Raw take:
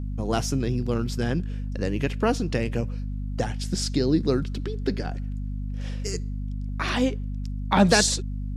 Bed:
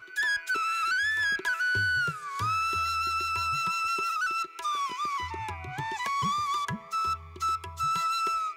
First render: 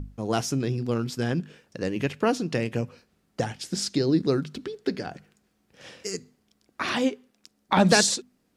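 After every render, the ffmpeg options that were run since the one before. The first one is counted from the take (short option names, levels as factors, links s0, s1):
-af "bandreject=f=50:t=h:w=6,bandreject=f=100:t=h:w=6,bandreject=f=150:t=h:w=6,bandreject=f=200:t=h:w=6,bandreject=f=250:t=h:w=6"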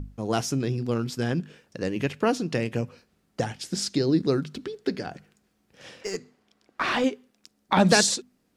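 -filter_complex "[0:a]asettb=1/sr,asplit=3[s0][s1][s2];[s0]atrim=end=6.014[s3];[s1]atrim=start=6.01:end=7.04,asetpts=PTS-STARTPTS,afade=t=in:d=0.004:c=qsin,afade=t=out:st=1.026:d=0.004:c=qsin,asplit=2[s4][s5];[s5]highpass=f=720:p=1,volume=5.01,asoftclip=type=tanh:threshold=0.188[s6];[s4][s6]amix=inputs=2:normalize=0,lowpass=f=1800:p=1,volume=0.501[s7];[s2]atrim=start=7.036[s8];[s3][s7]acrossfade=d=0.004:c1=hsin:c2=qsin[s9];[s9][s8]acrossfade=d=0.004:c1=qsin:c2=hsin"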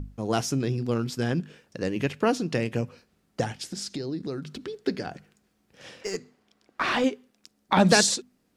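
-filter_complex "[0:a]asettb=1/sr,asplit=3[s0][s1][s2];[s0]atrim=end=3.654[s3];[s1]atrim=start=3.65:end=4.68,asetpts=PTS-STARTPTS,afade=t=in:d=0.004:c=qsin,afade=t=out:st=1.026:d=0.004:c=qsin,acompressor=threshold=0.0224:ratio=2.5:attack=3.2:release=140:knee=1:detection=peak[s4];[s2]atrim=start=4.676[s5];[s3][s4]acrossfade=d=0.004:c1=hsin:c2=qsin[s6];[s6][s5]acrossfade=d=0.004:c1=qsin:c2=hsin"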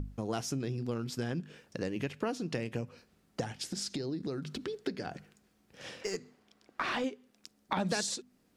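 -af "acompressor=threshold=0.02:ratio=3"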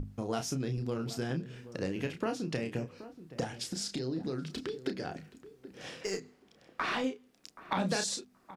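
-filter_complex "[0:a]asplit=2[s0][s1];[s1]adelay=31,volume=0.447[s2];[s0][s2]amix=inputs=2:normalize=0,asplit=2[s3][s4];[s4]adelay=776,lowpass=f=1000:p=1,volume=0.2,asplit=2[s5][s6];[s6]adelay=776,lowpass=f=1000:p=1,volume=0.18[s7];[s3][s5][s7]amix=inputs=3:normalize=0"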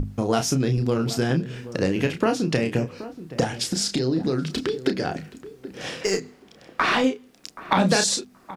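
-af "volume=3.98"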